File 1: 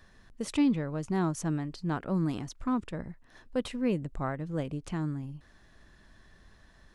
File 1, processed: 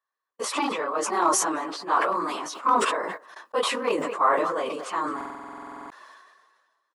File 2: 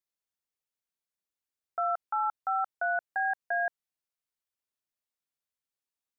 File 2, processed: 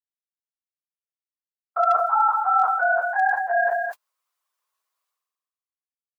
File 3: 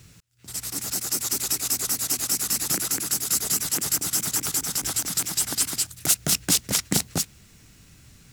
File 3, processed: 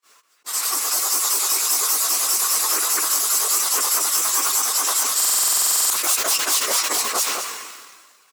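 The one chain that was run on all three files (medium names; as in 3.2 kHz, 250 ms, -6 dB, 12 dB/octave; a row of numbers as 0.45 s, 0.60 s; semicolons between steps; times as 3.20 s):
phase randomisation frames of 50 ms; echo from a far wall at 37 m, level -22 dB; hard clipper -20 dBFS; high-pass 430 Hz 24 dB/octave; dynamic bell 1.5 kHz, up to -3 dB, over -43 dBFS, Q 1.2; gate -54 dBFS, range -38 dB; peak limiter -22.5 dBFS; peaking EQ 1.1 kHz +14 dB 0.49 oct; buffer glitch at 5.16 s, samples 2048, times 15; decay stretcher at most 37 dB/s; peak normalisation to -9 dBFS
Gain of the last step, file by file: +8.5 dB, +7.5 dB, +10.0 dB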